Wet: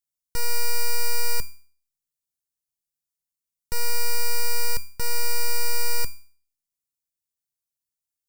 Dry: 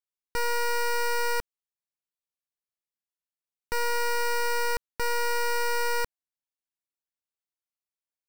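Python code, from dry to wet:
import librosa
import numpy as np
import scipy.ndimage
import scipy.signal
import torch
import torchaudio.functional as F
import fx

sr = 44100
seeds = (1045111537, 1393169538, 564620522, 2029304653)

y = fx.bass_treble(x, sr, bass_db=13, treble_db=14)
y = fx.comb_fb(y, sr, f0_hz=140.0, decay_s=0.44, harmonics='all', damping=0.0, mix_pct=60)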